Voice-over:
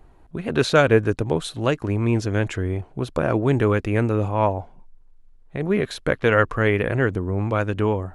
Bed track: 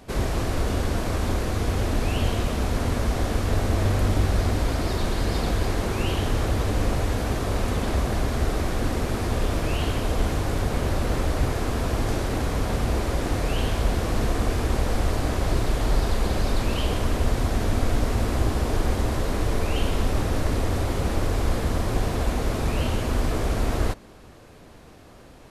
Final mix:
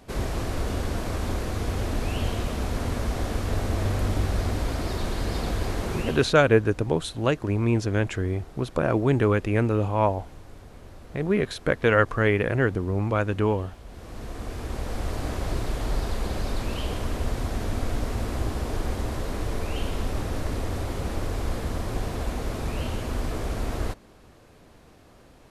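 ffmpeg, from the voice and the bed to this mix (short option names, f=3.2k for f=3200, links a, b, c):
-filter_complex "[0:a]adelay=5600,volume=-2dB[a];[1:a]volume=13dB,afade=t=out:st=5.95:d=0.4:silence=0.125893,afade=t=in:st=13.85:d=1.42:silence=0.149624[b];[a][b]amix=inputs=2:normalize=0"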